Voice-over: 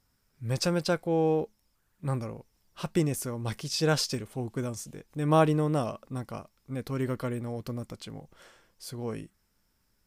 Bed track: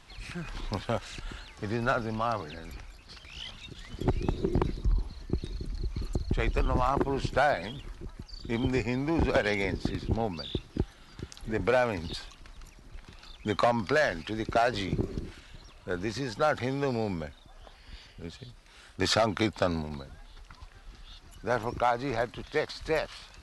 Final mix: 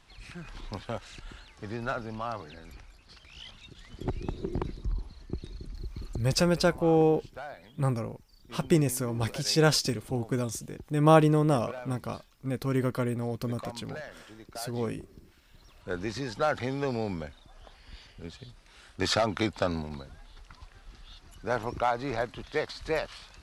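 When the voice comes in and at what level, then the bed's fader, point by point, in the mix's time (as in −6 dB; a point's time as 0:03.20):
5.75 s, +3.0 dB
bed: 0:06.16 −5 dB
0:06.47 −16.5 dB
0:15.21 −16.5 dB
0:15.86 −1 dB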